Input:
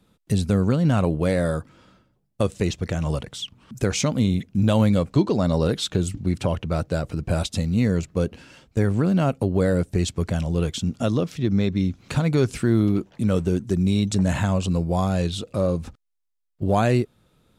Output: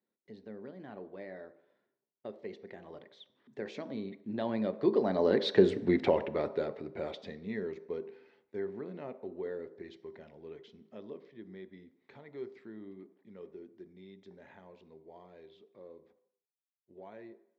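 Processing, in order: Doppler pass-by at 5.78, 22 m/s, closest 5.6 m; speaker cabinet 270–3800 Hz, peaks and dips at 400 Hz +9 dB, 850 Hz +3 dB, 1300 Hz -6 dB, 1900 Hz +9 dB, 2800 Hz -7 dB; on a send: reverb RT60 0.75 s, pre-delay 3 ms, DRR 11 dB; on the sum: gain +1.5 dB

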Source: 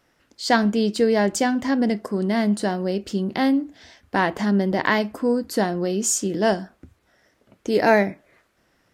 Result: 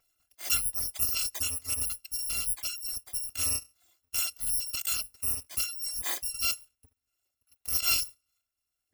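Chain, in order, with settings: FFT order left unsorted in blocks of 256 samples; reverb removal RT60 1.4 s; gain -9 dB

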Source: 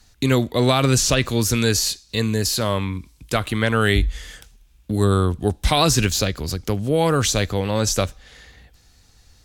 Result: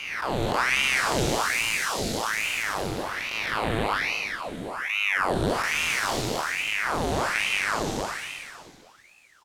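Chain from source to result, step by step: time blur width 0.67 s; 0.93–2.69 added noise brown -36 dBFS; echo 0.311 s -7.5 dB; ring modulator with a swept carrier 1400 Hz, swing 85%, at 1.2 Hz

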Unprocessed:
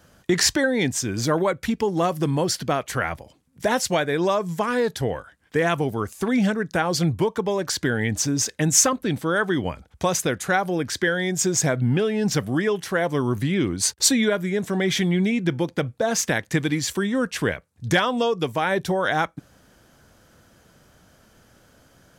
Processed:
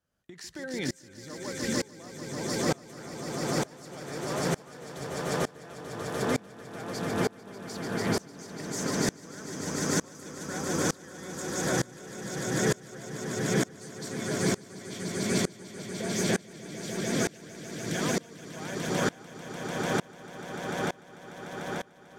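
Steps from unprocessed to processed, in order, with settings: compressor, threshold -24 dBFS, peak gain reduction 11.5 dB; swelling echo 0.148 s, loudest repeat 8, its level -5 dB; dB-ramp tremolo swelling 1.1 Hz, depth 27 dB; gain -3 dB

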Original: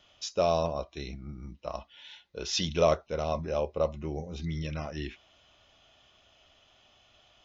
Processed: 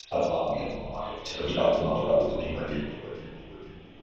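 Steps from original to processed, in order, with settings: local time reversal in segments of 0.234 s; LPF 3700 Hz 12 dB/oct; in parallel at +2.5 dB: compressor 10:1, threshold -40 dBFS, peak gain reduction 21.5 dB; on the sum: plain phase-vocoder stretch 0.54×; envelope flanger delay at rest 3.4 ms, full sweep at -28 dBFS; harmonic-percussive split harmonic -17 dB; chorus voices 4, 0.67 Hz, delay 30 ms, depth 3.2 ms; on a send: frequency-shifting echo 0.473 s, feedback 57%, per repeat -60 Hz, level -12.5 dB; on the sum: spring tank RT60 1 s, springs 36/50 ms, chirp 50 ms, DRR -5 dB; gain +7.5 dB

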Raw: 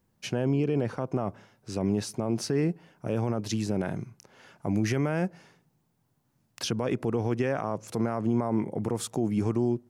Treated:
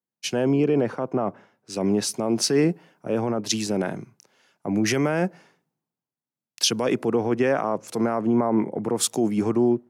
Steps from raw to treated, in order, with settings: HPF 200 Hz 12 dB/oct; three-band expander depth 70%; gain +7 dB

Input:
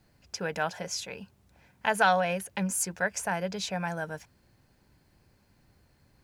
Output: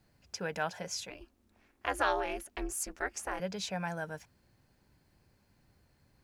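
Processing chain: 1.1–3.4 ring modulator 150 Hz; gain -4 dB

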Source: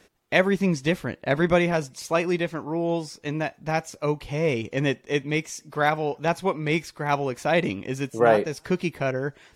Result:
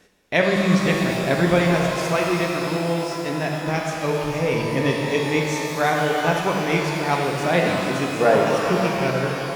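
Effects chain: reverse delay 0.317 s, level -12 dB; shimmer reverb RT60 3 s, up +12 st, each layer -8 dB, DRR -0.5 dB

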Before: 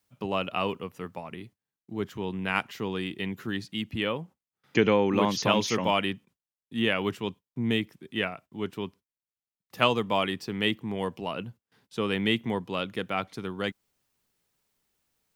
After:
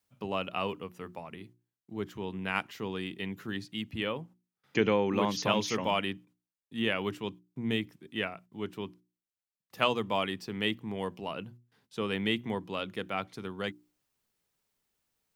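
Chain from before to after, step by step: notches 60/120/180/240/300/360 Hz; gain -4 dB

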